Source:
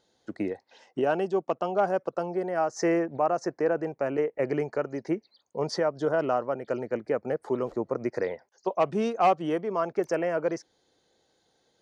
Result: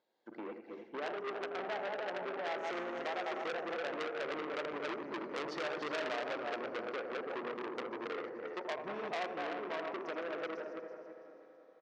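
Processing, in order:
feedback delay that plays each chunk backwards 159 ms, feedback 61%, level −5.5 dB
source passing by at 0:05.24, 15 m/s, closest 10 metres
downward compressor 5 to 1, threshold −40 dBFS, peak gain reduction 16 dB
low-pass filter 2,800 Hz 12 dB per octave
on a send at −12.5 dB: convolution reverb RT60 4.5 s, pre-delay 27 ms
on the sum: pitch-shifted copies added −7 semitones −12 dB, −4 semitones −15 dB
high-pass filter 300 Hz 12 dB per octave
single-tap delay 81 ms −9 dB
saturating transformer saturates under 2,900 Hz
level +8 dB

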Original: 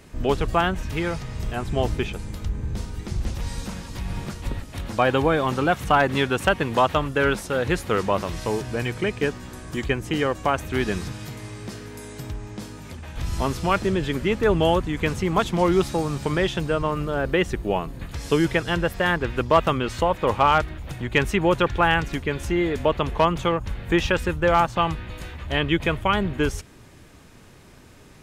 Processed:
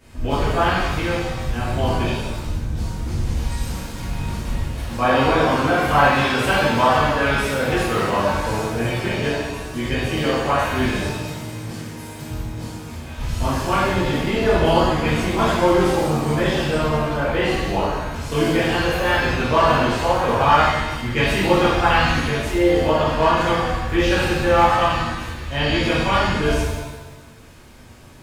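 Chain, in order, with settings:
reverb with rising layers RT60 1.1 s, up +7 semitones, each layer −8 dB, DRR −11.5 dB
level −8.5 dB

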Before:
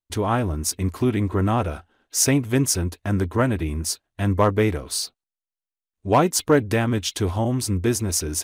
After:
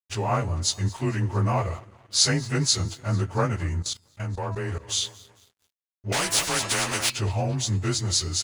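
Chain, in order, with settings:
partials spread apart or drawn together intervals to 91%
repeating echo 224 ms, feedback 55%, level −21 dB
noise gate with hold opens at −48 dBFS
parametric band 270 Hz −11.5 dB 1.5 octaves
hum removal 331.5 Hz, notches 40
pitch vibrato 8.1 Hz 34 cents
dead-zone distortion −54 dBFS
0:03.80–0:04.89: output level in coarse steps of 16 dB
0:06.12–0:07.10: every bin compressed towards the loudest bin 4 to 1
level +3 dB

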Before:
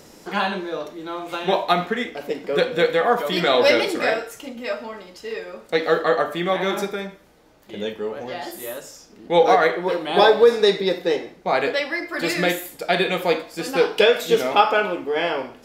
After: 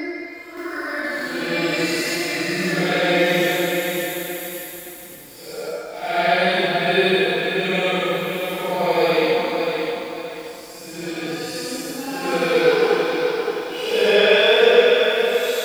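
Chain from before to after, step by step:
extreme stretch with random phases 7.1×, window 0.10 s, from 0:12.02
feedback echo at a low word length 571 ms, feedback 35%, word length 7 bits, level −6 dB

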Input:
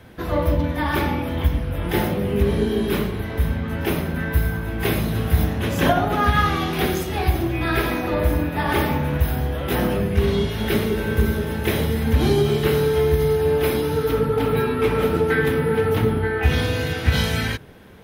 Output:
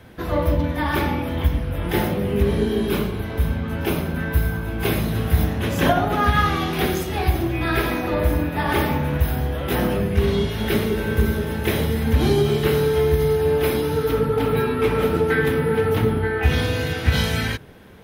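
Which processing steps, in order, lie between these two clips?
0:02.88–0:04.92: notch filter 1,900 Hz, Q 8.9

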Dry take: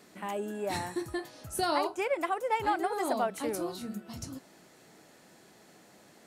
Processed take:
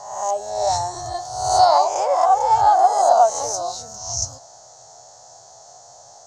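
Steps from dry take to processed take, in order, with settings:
peak hold with a rise ahead of every peak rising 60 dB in 0.90 s
drawn EQ curve 120 Hz 0 dB, 200 Hz −26 dB, 340 Hz −21 dB, 720 Hz +9 dB, 2,400 Hz −22 dB, 6,400 Hz +14 dB, 11,000 Hz −24 dB
level +8.5 dB

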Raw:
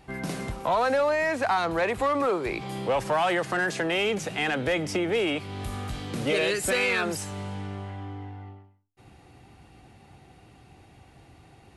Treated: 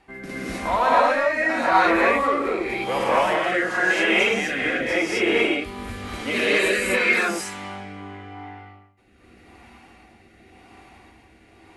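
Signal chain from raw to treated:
graphic EQ with 10 bands 125 Hz −11 dB, 250 Hz +4 dB, 1,000 Hz +4 dB, 2,000 Hz +7 dB
reverb whose tail is shaped and stops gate 280 ms rising, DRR −7.5 dB
rotating-speaker cabinet horn 0.9 Hz
level −3.5 dB

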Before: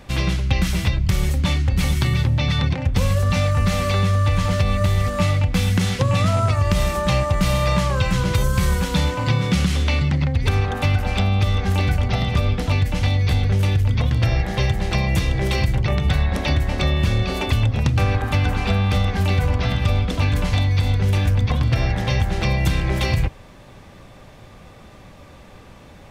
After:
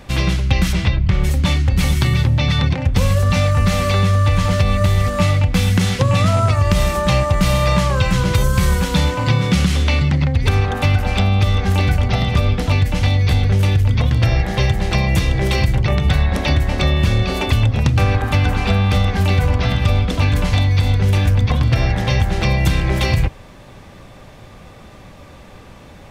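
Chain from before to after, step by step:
0:00.72–0:01.23: low-pass filter 6,100 Hz → 2,400 Hz 12 dB per octave
level +3.5 dB

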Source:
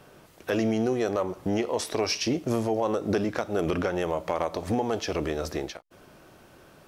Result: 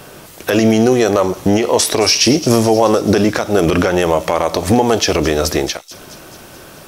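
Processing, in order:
high-shelf EQ 3,900 Hz +8.5 dB
on a send: delay with a high-pass on its return 216 ms, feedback 63%, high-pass 4,500 Hz, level −13 dB
on the sum: boost into a limiter +15.5 dB
level −1 dB

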